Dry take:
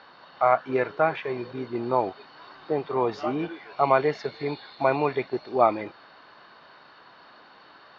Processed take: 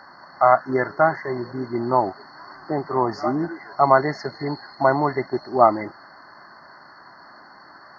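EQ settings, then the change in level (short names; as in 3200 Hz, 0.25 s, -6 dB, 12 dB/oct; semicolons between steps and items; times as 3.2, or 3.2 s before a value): brick-wall FIR band-stop 2100–4200 Hz; bell 470 Hz -14.5 dB 0.23 oct; +6.0 dB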